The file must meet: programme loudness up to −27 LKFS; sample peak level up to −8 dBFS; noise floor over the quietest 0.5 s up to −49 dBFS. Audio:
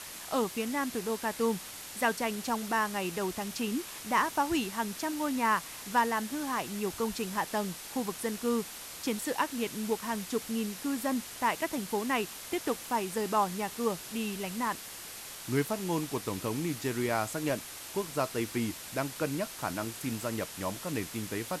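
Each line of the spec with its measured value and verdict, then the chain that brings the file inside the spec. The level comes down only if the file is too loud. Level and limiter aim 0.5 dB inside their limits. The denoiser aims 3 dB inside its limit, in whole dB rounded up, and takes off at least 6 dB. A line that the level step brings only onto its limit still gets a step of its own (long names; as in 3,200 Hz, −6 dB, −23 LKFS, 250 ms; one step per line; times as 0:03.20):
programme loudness −32.5 LKFS: in spec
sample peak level −15.0 dBFS: in spec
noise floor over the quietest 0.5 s −44 dBFS: out of spec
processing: broadband denoise 8 dB, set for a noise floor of −44 dBFS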